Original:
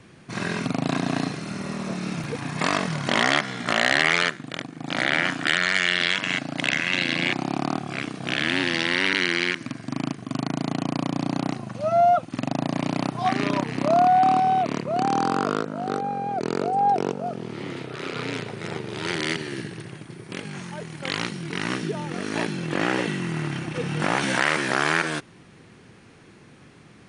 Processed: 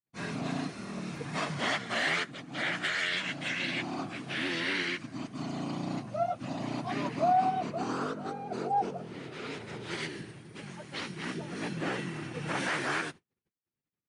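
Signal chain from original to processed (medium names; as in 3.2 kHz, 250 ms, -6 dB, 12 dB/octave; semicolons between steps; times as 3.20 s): gate -44 dBFS, range -50 dB; plain phase-vocoder stretch 0.52×; trim -5.5 dB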